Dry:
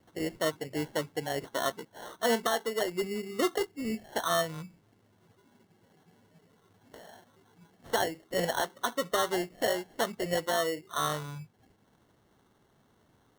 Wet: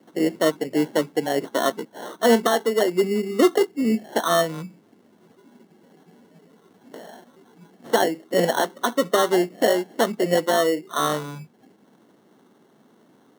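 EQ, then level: high-pass 210 Hz 24 dB/octave; bass shelf 400 Hz +12 dB; +6.0 dB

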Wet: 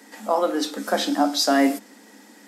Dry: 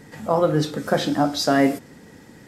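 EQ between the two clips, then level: rippled Chebyshev high-pass 200 Hz, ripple 6 dB; treble shelf 2.3 kHz +11 dB; 0.0 dB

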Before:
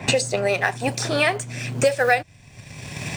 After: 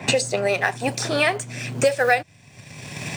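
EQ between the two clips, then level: high-pass 110 Hz; 0.0 dB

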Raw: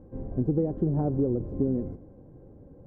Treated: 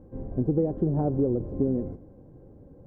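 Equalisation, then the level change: dynamic bell 630 Hz, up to +3 dB, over -40 dBFS, Q 0.88; 0.0 dB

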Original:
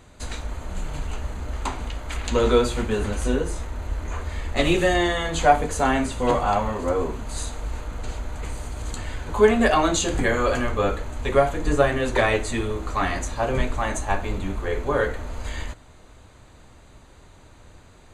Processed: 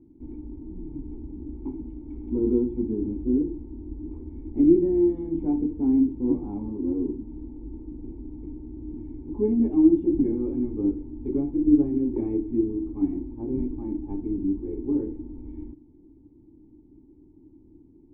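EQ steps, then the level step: cascade formant filter u; resonant low shelf 460 Hz +10 dB, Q 3; peaking EQ 3 kHz +13 dB 0.76 oct; -5.5 dB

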